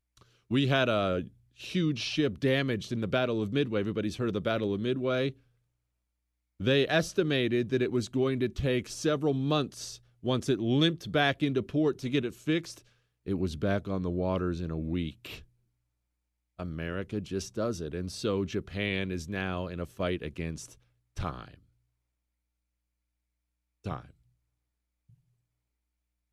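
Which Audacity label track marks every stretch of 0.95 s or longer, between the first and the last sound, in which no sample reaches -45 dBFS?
5.320000	6.600000	silence
15.420000	16.590000	silence
21.540000	23.850000	silence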